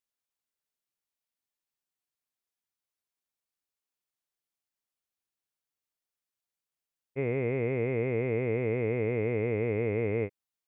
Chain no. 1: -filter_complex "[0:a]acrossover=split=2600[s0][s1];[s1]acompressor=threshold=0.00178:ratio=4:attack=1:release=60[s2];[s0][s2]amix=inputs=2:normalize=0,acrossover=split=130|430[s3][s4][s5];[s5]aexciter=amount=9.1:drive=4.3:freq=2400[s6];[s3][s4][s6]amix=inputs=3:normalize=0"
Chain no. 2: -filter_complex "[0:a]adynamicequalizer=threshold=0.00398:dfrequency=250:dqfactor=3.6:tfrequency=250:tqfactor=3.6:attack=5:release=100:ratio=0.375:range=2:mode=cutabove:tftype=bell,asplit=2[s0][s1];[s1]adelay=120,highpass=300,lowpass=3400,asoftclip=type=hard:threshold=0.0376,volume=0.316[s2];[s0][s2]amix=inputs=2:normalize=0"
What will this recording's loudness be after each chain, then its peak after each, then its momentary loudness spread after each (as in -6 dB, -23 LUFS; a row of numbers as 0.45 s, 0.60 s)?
-29.0 LUFS, -30.5 LUFS; -18.5 dBFS, -18.5 dBFS; 4 LU, 4 LU